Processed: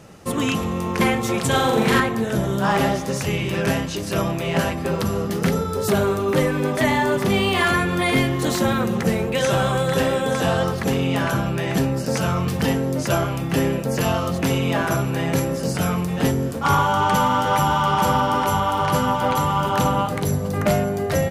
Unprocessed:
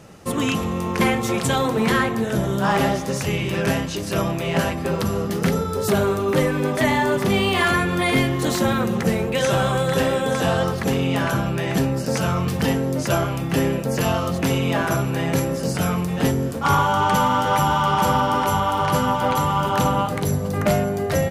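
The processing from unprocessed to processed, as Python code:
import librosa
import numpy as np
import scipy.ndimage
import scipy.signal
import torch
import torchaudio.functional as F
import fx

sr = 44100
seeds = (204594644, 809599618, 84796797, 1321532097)

y = fx.room_flutter(x, sr, wall_m=7.3, rt60_s=0.92, at=(1.47, 2.0))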